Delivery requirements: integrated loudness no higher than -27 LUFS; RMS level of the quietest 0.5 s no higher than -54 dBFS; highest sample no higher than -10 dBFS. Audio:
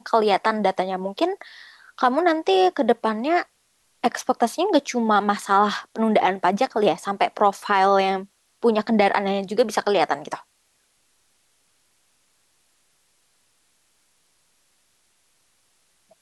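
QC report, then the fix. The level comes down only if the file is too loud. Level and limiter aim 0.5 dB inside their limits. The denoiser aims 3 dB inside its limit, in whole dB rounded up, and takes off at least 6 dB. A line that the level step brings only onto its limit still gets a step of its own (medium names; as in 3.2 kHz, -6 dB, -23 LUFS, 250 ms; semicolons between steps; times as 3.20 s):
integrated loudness -21.5 LUFS: fail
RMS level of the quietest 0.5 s -66 dBFS: pass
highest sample -6.0 dBFS: fail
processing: trim -6 dB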